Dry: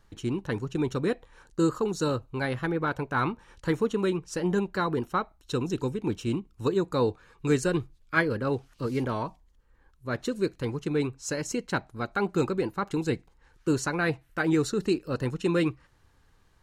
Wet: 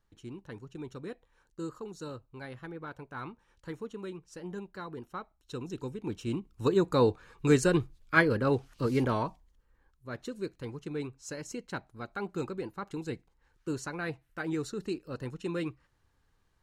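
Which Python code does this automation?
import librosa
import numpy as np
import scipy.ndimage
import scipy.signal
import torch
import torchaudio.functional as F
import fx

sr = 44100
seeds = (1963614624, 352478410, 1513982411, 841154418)

y = fx.gain(x, sr, db=fx.line((4.91, -14.0), (6.03, -7.5), (6.82, 1.0), (9.13, 1.0), (10.09, -9.0)))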